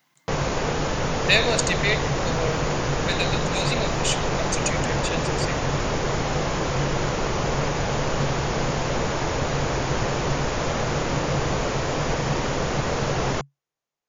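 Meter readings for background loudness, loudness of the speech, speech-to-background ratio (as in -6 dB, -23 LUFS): -25.0 LUFS, -26.5 LUFS, -1.5 dB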